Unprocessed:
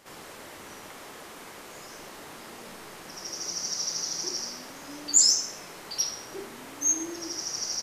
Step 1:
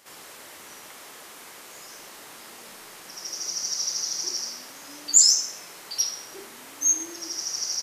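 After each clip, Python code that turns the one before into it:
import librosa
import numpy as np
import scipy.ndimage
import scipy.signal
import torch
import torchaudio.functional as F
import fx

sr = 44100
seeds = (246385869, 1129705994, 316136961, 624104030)

y = fx.tilt_eq(x, sr, slope=2.0)
y = y * librosa.db_to_amplitude(-2.0)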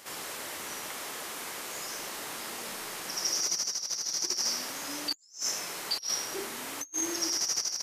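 y = fx.over_compress(x, sr, threshold_db=-33.0, ratio=-0.5)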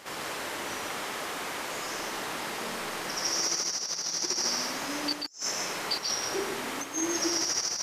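y = fx.lowpass(x, sr, hz=3100.0, slope=6)
y = y + 10.0 ** (-4.5 / 20.0) * np.pad(y, (int(136 * sr / 1000.0), 0))[:len(y)]
y = y * librosa.db_to_amplitude(5.5)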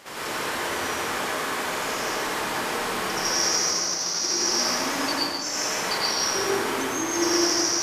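y = fx.rev_plate(x, sr, seeds[0], rt60_s=1.4, hf_ratio=0.55, predelay_ms=80, drr_db=-6.5)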